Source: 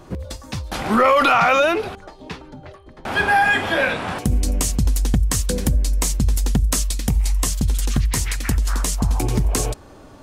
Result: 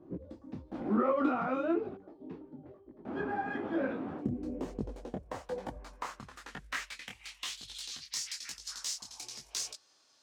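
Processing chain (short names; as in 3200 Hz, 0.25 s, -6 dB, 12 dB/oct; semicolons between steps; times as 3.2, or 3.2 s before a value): tracing distortion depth 0.096 ms; dynamic EQ 1300 Hz, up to +6 dB, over -32 dBFS; band-pass sweep 290 Hz -> 5200 Hz, 4.21–8.15; detuned doubles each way 36 cents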